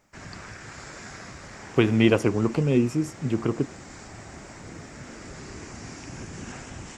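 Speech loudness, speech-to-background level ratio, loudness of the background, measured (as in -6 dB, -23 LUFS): -24.0 LUFS, 17.5 dB, -41.5 LUFS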